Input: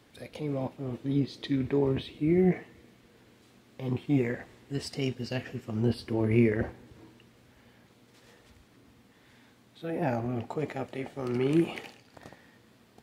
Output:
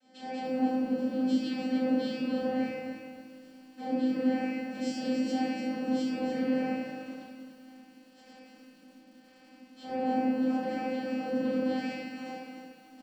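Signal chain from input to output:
random phases in long frames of 50 ms
high-pass filter 190 Hz 24 dB per octave
high-shelf EQ 3,800 Hz +9 dB
leveller curve on the samples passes 5
brickwall limiter −40.5 dBFS, peak gain reduction 29 dB
channel vocoder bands 8, saw 258 Hz
double-tracking delay 19 ms −4.5 dB
rectangular room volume 380 cubic metres, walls mixed, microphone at 7.3 metres
feedback echo at a low word length 290 ms, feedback 35%, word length 10 bits, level −7.5 dB

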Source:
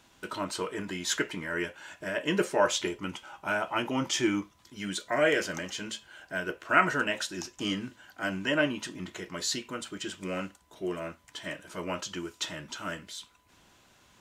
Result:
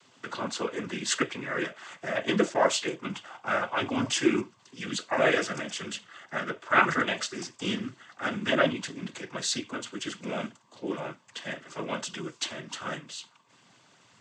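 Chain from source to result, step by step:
cochlear-implant simulation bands 16
0:02.54–0:03.07: downward expander −38 dBFS
level +2 dB

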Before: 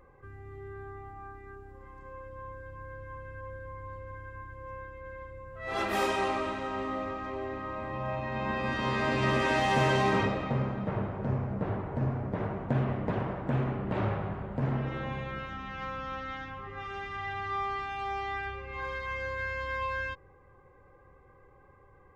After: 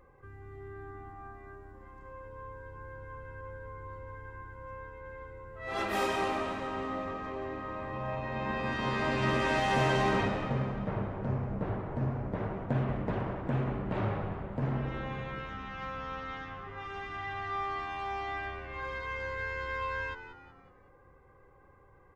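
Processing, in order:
echo with shifted repeats 185 ms, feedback 44%, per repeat −85 Hz, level −12 dB
level −2 dB

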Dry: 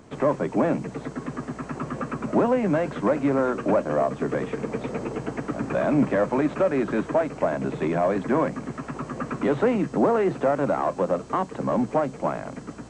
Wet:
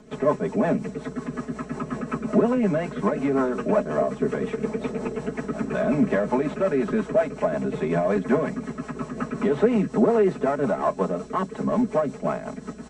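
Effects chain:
comb filter 4.7 ms, depth 90%
rotating-speaker cabinet horn 5.5 Hz

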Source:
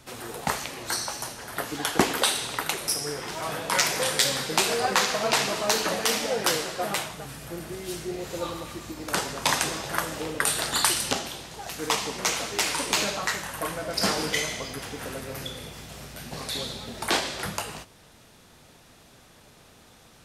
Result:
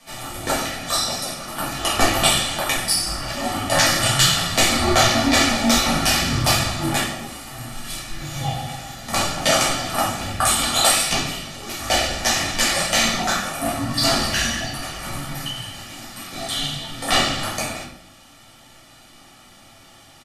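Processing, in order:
high-pass filter 660 Hz 12 dB per octave
comb filter 1.8 ms, depth 68%
frequency shifter −390 Hz
rectangular room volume 120 cubic metres, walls mixed, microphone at 1.6 metres

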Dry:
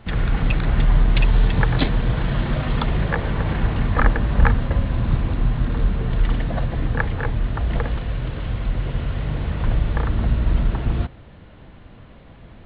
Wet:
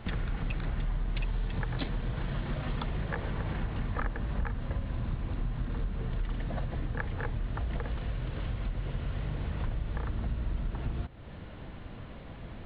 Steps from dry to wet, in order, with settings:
downward compressor 4 to 1, threshold −32 dBFS, peak gain reduction 20 dB

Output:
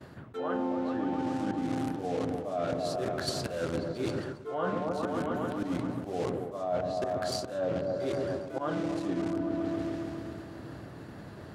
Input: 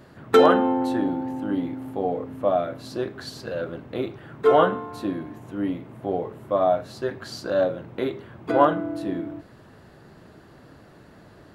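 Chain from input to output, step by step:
downward expander −46 dBFS
in parallel at −6.5 dB: bit reduction 5 bits
on the sum: high-pass filter 61 Hz 24 dB per octave
volume swells 191 ms
dynamic equaliser 8,300 Hz, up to +5 dB, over −50 dBFS, Q 0.91
treble cut that deepens with the level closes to 2,700 Hz, closed at −16.5 dBFS
low-shelf EQ 100 Hz +6.5 dB
echo whose low-pass opens from repeat to repeat 136 ms, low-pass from 400 Hz, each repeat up 1 octave, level −6 dB
reversed playback
downward compressor 16 to 1, threshold −32 dBFS, peak gain reduction 23 dB
reversed playback
level +4 dB

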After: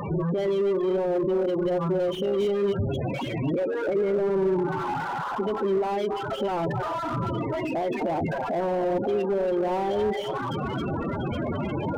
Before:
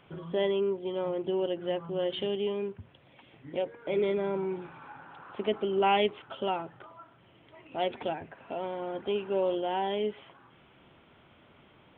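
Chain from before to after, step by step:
converter with a step at zero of −28.5 dBFS
in parallel at +1.5 dB: speech leveller 0.5 s
on the sum: brickwall limiter −18 dBFS, peak gain reduction 9.5 dB
feedback echo with a high-pass in the loop 273 ms, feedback 47%, high-pass 590 Hz, level −5.5 dB
spectral peaks only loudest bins 16
slew-rate limiting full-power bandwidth 41 Hz

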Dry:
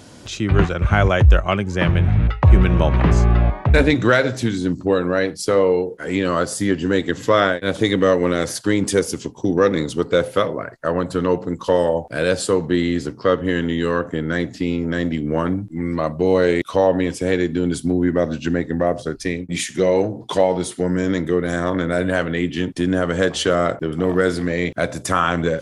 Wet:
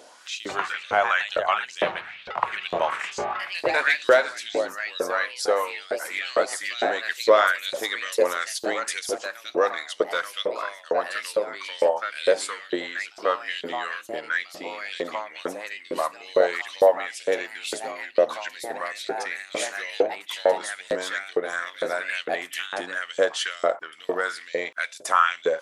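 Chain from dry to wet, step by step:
delay with pitch and tempo change per echo 213 ms, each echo +2 semitones, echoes 2, each echo −6 dB
auto-filter high-pass saw up 2.2 Hz 460–4,200 Hz
level −5.5 dB

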